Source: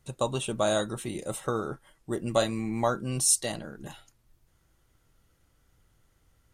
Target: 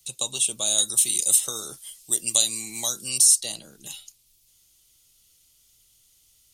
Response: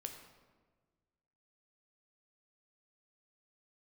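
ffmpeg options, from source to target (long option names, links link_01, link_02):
-filter_complex "[0:a]asettb=1/sr,asplit=3[link_01][link_02][link_03];[link_01]atrim=end=0.784[link_04];[link_02]atrim=start=0.78:end=3.18,asetpts=PTS-STARTPTS,afade=type=in:duration=0.004:curve=qsin,afade=type=out:start_time=2.396:duration=0.004:curve=qsin,highshelf=frequency=2700:gain=11.5[link_05];[link_03]atrim=start=3.176[link_06];[link_04][link_05]acrossfade=duration=0.004:curve1=hsin:curve2=qsin[link_07];[link_07][link_06]acrossfade=duration=0.004:curve1=qsin:curve2=hsin,acrossover=split=95|370|1800|3700[link_08][link_09][link_10][link_11][link_12];[link_08]acompressor=threshold=-56dB:ratio=4[link_13];[link_09]acompressor=threshold=-36dB:ratio=4[link_14];[link_10]acompressor=threshold=-27dB:ratio=4[link_15];[link_11]acompressor=threshold=-54dB:ratio=4[link_16];[link_12]acompressor=threshold=-33dB:ratio=4[link_17];[link_13][link_14][link_15][link_16][link_17]amix=inputs=5:normalize=0,aexciter=amount=15.7:drive=2.7:freq=2500,volume=-8.5dB"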